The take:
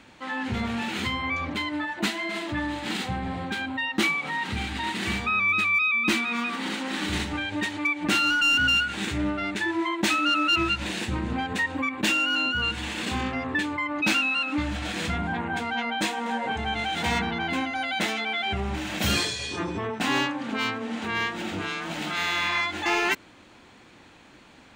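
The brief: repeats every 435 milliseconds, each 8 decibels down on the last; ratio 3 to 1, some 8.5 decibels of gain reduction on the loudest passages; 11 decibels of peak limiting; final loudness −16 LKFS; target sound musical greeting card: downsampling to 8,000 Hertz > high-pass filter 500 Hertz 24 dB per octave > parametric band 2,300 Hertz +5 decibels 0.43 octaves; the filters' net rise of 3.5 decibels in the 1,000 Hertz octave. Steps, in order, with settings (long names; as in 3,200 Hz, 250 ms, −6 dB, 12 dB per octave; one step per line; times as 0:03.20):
parametric band 1,000 Hz +4.5 dB
downward compressor 3 to 1, threshold −30 dBFS
brickwall limiter −28.5 dBFS
repeating echo 435 ms, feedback 40%, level −8 dB
downsampling to 8,000 Hz
high-pass filter 500 Hz 24 dB per octave
parametric band 2,300 Hz +5 dB 0.43 octaves
level +17.5 dB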